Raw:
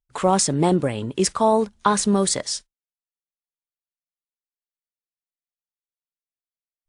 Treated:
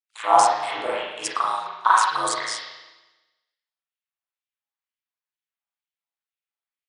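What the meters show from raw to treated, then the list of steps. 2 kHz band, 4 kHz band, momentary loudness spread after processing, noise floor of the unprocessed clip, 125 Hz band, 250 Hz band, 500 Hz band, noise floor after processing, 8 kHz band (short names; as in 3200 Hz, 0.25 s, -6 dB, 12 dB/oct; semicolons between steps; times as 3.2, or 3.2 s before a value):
+7.0 dB, -1.5 dB, 12 LU, under -85 dBFS, under -25 dB, -20.0 dB, -6.5 dB, under -85 dBFS, -6.0 dB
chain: LFO high-pass sine 2.1 Hz 750–2900 Hz; ring modulator 55 Hz; spring tank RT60 1.1 s, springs 35/41 ms, chirp 20 ms, DRR -7.5 dB; gain -3.5 dB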